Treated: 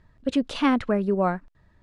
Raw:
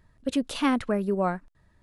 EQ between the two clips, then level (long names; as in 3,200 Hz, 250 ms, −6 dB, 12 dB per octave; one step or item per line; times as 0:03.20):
high-frequency loss of the air 85 metres
+3.0 dB